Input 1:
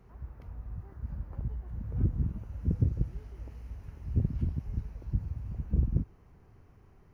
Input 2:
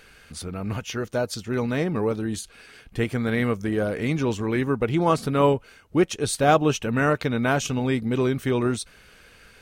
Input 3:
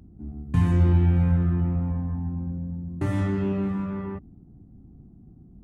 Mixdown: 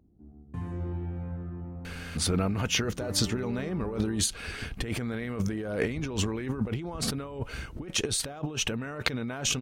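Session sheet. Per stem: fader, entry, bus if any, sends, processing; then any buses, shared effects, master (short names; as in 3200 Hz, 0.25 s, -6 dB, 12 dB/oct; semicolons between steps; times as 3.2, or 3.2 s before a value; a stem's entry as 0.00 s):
-12.5 dB, 1.80 s, no send, minimum comb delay 2.6 ms
+1.0 dB, 1.85 s, no send, high shelf 11000 Hz -5.5 dB; negative-ratio compressor -33 dBFS, ratio -1
-15.5 dB, 0.00 s, no send, EQ curve 170 Hz 0 dB, 470 Hz +8 dB, 3100 Hz -2 dB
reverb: off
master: dry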